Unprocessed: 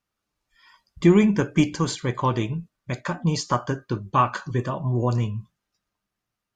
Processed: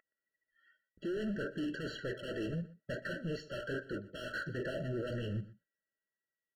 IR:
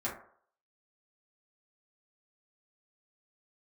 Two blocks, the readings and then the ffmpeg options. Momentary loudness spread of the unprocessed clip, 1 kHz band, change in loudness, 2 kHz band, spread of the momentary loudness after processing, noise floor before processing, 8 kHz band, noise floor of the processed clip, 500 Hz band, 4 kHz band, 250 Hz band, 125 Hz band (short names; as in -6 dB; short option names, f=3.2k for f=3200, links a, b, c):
12 LU, -26.0 dB, -16.0 dB, -8.0 dB, 5 LU, -84 dBFS, -24.0 dB, under -85 dBFS, -12.5 dB, -12.5 dB, -17.0 dB, -18.0 dB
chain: -filter_complex "[0:a]agate=range=-23dB:threshold=-44dB:ratio=16:detection=peak,lowshelf=f=250:g=-9.5,areverse,acompressor=threshold=-35dB:ratio=12,areverse,aeval=exprs='val(0)+0.000891*sin(2*PI*2100*n/s)':c=same,asplit=2[a][b];[b]highpass=f=720:p=1,volume=21dB,asoftclip=type=tanh:threshold=-26dB[c];[a][c]amix=inputs=2:normalize=0,lowpass=f=1.1k:p=1,volume=-6dB,adynamicsmooth=sensitivity=7:basefreq=3.3k,asoftclip=type=hard:threshold=-38dB,flanger=delay=0.3:depth=3.7:regen=-76:speed=0.62:shape=sinusoidal,asplit=2[d][e];[e]adelay=122.4,volume=-18dB,highshelf=f=4k:g=-2.76[f];[d][f]amix=inputs=2:normalize=0,afftfilt=real='re*eq(mod(floor(b*sr/1024/660),2),0)':imag='im*eq(mod(floor(b*sr/1024/660),2),0)':win_size=1024:overlap=0.75,volume=8.5dB"